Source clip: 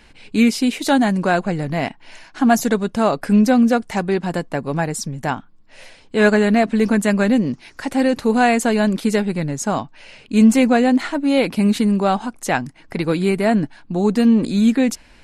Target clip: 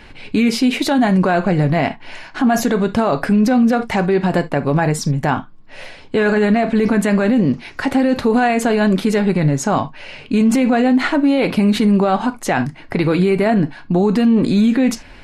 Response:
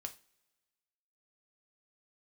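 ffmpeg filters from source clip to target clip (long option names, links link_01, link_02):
-filter_complex "[0:a]asplit=2[link_01][link_02];[link_02]highshelf=frequency=7300:gain=-11.5[link_03];[1:a]atrim=start_sample=2205,afade=type=out:start_time=0.13:duration=0.01,atrim=end_sample=6174,lowpass=6800[link_04];[link_03][link_04]afir=irnorm=-1:irlink=0,volume=6.5dB[link_05];[link_01][link_05]amix=inputs=2:normalize=0,alimiter=level_in=8dB:limit=-1dB:release=50:level=0:latency=1,volume=-6.5dB"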